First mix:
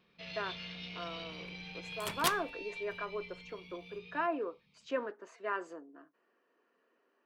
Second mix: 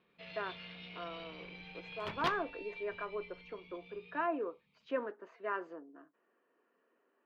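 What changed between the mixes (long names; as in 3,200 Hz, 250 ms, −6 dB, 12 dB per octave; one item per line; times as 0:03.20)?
first sound: add low-shelf EQ 220 Hz −8 dB
master: add high-frequency loss of the air 270 metres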